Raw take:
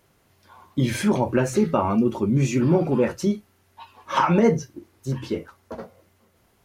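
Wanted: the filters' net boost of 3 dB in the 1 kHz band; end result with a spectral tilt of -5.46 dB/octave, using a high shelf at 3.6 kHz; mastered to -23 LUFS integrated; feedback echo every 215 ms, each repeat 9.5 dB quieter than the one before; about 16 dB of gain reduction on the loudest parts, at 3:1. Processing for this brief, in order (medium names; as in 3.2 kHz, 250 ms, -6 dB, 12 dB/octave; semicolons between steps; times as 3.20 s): peaking EQ 1 kHz +4 dB; treble shelf 3.6 kHz -7 dB; compression 3:1, threshold -36 dBFS; feedback delay 215 ms, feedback 33%, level -9.5 dB; trim +13 dB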